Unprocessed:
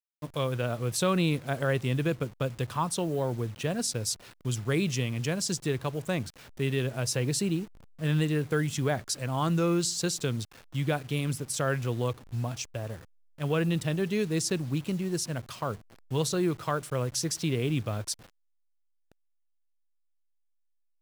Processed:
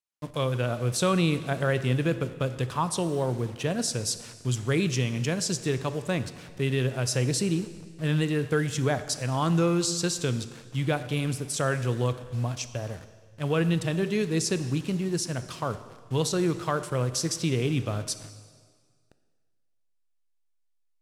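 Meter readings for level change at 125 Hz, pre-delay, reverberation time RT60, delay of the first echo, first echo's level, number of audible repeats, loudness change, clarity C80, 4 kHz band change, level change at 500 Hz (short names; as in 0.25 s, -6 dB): +2.5 dB, 7 ms, 1.7 s, none, none, none, +2.0 dB, 14.0 dB, +2.0 dB, +2.5 dB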